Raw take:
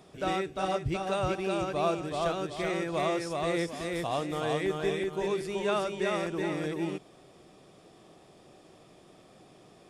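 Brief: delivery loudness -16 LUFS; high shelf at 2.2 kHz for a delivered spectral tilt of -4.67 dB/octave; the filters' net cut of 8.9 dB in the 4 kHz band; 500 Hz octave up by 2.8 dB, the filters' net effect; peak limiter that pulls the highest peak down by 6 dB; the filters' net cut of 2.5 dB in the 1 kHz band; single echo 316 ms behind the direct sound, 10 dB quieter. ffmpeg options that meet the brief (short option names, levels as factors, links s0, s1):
-af "equalizer=f=500:t=o:g=5.5,equalizer=f=1000:t=o:g=-5.5,highshelf=f=2200:g=-4,equalizer=f=4000:t=o:g=-7.5,alimiter=limit=0.0794:level=0:latency=1,aecho=1:1:316:0.316,volume=5.62"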